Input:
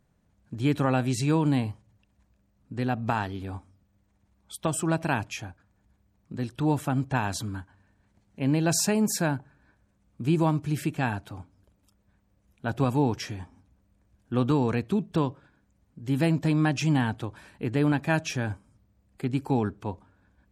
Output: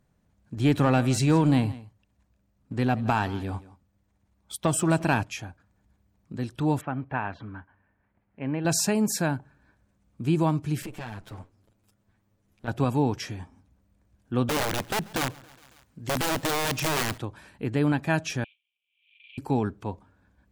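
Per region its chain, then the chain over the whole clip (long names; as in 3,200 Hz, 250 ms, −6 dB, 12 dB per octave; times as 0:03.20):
0:00.57–0:05.23: leveller curve on the samples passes 1 + single-tap delay 172 ms −18.5 dB
0:06.81–0:08.65: low-pass filter 2,400 Hz 24 dB per octave + low-shelf EQ 400 Hz −7.5 dB
0:10.82–0:12.68: lower of the sound and its delayed copy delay 9.2 ms + downward compressor 12 to 1, threshold −32 dBFS
0:14.49–0:17.18: wrap-around overflow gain 21 dB + repeating echo 138 ms, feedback 59%, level −23 dB + one half of a high-frequency compander encoder only
0:18.44–0:19.38: variable-slope delta modulation 16 kbit/s + Chebyshev high-pass with heavy ripple 2,300 Hz, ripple 6 dB + background raised ahead of every attack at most 81 dB per second
whole clip: no processing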